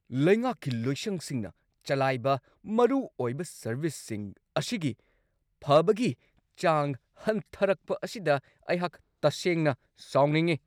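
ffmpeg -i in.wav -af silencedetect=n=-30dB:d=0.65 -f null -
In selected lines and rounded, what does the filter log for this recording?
silence_start: 4.91
silence_end: 5.67 | silence_duration: 0.76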